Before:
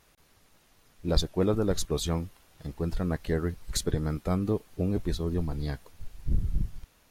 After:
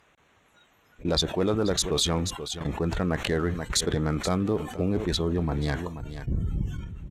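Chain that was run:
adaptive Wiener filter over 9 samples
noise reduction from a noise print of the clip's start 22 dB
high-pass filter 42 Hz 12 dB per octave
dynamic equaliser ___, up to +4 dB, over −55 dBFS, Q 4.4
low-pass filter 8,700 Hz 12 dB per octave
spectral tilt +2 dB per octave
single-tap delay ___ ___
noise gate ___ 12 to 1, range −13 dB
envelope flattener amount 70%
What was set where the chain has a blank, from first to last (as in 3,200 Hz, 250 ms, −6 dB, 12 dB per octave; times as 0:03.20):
3,500 Hz, 482 ms, −21.5 dB, −48 dBFS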